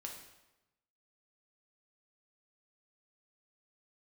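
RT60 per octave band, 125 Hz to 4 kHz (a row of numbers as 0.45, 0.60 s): 1.2, 1.1, 1.0, 0.95, 0.90, 0.80 s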